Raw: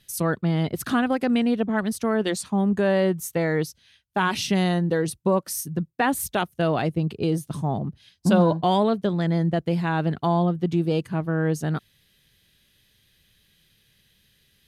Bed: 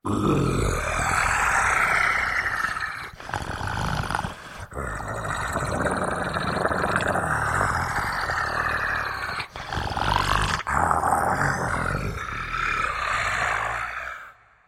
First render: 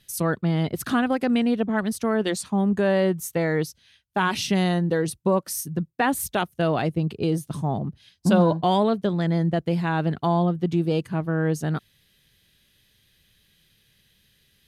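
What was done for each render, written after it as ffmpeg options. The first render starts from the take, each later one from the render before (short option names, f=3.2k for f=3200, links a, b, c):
-af anull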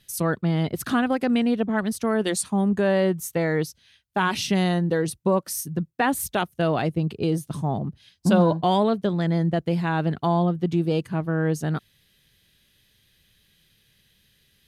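-filter_complex "[0:a]asettb=1/sr,asplit=3[a][b][c];[a]atrim=end=2.074[d];[b]atrim=start=2.07:end=2.68,asetpts=PTS-STARTPTS,afade=t=in:d=0.004:c=qsin,afade=t=out:st=0.606:d=0.004:c=qsin,equalizer=f=10k:t=o:w=0.77:g=8.5[e];[c]atrim=start=2.676[f];[d][e]acrossfade=d=0.004:c1=hsin:c2=qsin[g];[g][f]acrossfade=d=0.004:c1=qsin:c2=hsin"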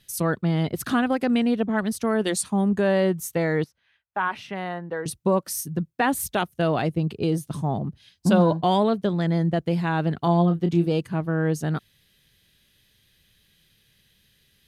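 -filter_complex "[0:a]asettb=1/sr,asplit=3[a][b][c];[a]atrim=end=3.644[d];[b]atrim=start=3.64:end=5.06,asetpts=PTS-STARTPTS,afade=t=in:d=0.004:c=qsin,afade=t=out:st=1.416:d=0.004:c=qsin,acrossover=split=570 2200:gain=0.2 1 0.0794[e][f][g];[e][f][g]amix=inputs=3:normalize=0[h];[c]atrim=start=5.056[i];[d][h]acrossfade=d=0.004:c1=hsin:c2=qsin[j];[j][i]acrossfade=d=0.004:c1=qsin:c2=hsin,asettb=1/sr,asplit=3[k][l][m];[k]atrim=end=10.194[n];[l]atrim=start=10.19:end=10.87,asetpts=PTS-STARTPTS,afade=t=in:d=0.004:c=qsin,afade=t=out:st=0.676:d=0.004:c=qsin,asplit=2[o][p];[p]adelay=29,volume=-8dB[q];[o][q]amix=inputs=2:normalize=0,atrim=end_sample=29988[r];[m]atrim=start=10.866[s];[n][r]acrossfade=d=0.004:c1=hsin:c2=qsin[t];[t][s]acrossfade=d=0.004:c1=qsin:c2=hsin"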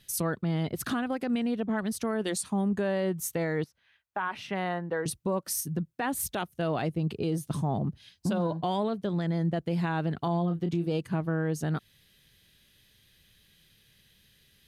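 -af "acompressor=threshold=-25dB:ratio=1.5,alimiter=limit=-21dB:level=0:latency=1:release=158"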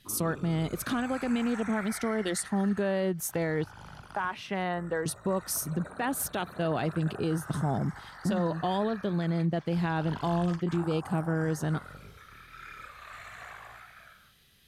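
-filter_complex "[1:a]volume=-21dB[a];[0:a][a]amix=inputs=2:normalize=0"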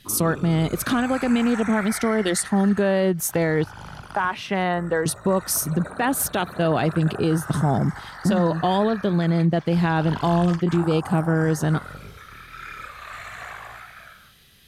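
-af "volume=8.5dB"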